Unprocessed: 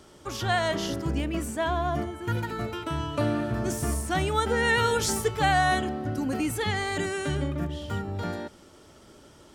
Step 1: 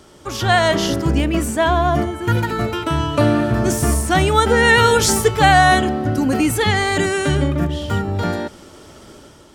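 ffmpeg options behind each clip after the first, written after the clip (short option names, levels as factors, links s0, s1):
-af "dynaudnorm=f=110:g=7:m=1.78,volume=2"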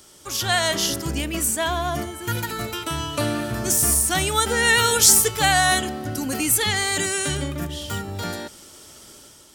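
-af "crystalizer=i=5.5:c=0,volume=0.316"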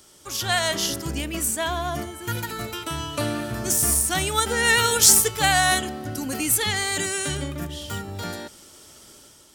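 -af "aeval=exprs='0.891*(cos(1*acos(clip(val(0)/0.891,-1,1)))-cos(1*PI/2))+0.0355*(cos(7*acos(clip(val(0)/0.891,-1,1)))-cos(7*PI/2))':c=same"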